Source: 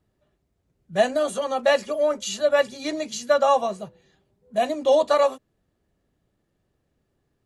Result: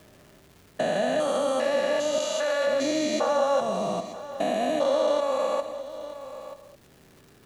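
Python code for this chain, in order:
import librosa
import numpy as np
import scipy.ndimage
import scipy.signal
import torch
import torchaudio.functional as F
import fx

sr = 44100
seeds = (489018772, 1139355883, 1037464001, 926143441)

p1 = fx.spec_steps(x, sr, hold_ms=400)
p2 = fx.highpass(p1, sr, hz=1100.0, slope=6, at=(2.18, 2.67))
p3 = fx.over_compress(p2, sr, threshold_db=-33.0, ratio=-1.0)
p4 = p2 + (p3 * 10.0 ** (-2.0 / 20.0))
p5 = fx.dmg_crackle(p4, sr, seeds[0], per_s=550.0, level_db=-54.0)
p6 = p5 + fx.echo_single(p5, sr, ms=933, db=-20.0, dry=0)
p7 = fx.rev_gated(p6, sr, seeds[1], gate_ms=240, shape='flat', drr_db=9.5)
y = fx.band_squash(p7, sr, depth_pct=40)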